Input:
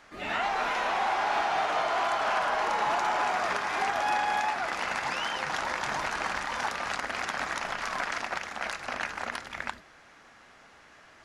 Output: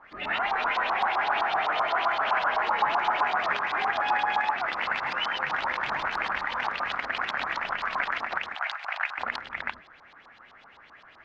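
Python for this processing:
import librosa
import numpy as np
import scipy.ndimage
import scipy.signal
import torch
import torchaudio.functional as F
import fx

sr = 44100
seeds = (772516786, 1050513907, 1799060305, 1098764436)

y = fx.ellip_bandpass(x, sr, low_hz=700.0, high_hz=8400.0, order=3, stop_db=40, at=(8.55, 9.18))
y = fx.filter_lfo_lowpass(y, sr, shape='saw_up', hz=7.8, low_hz=920.0, high_hz=4400.0, q=3.7)
y = F.gain(torch.from_numpy(y), -2.5).numpy()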